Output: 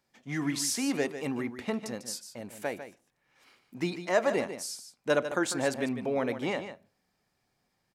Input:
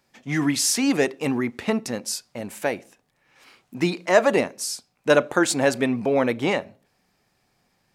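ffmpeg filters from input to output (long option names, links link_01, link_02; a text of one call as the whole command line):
ffmpeg -i in.wav -af "bandreject=frequency=2600:width=26,aecho=1:1:148:0.299,volume=-9dB" out.wav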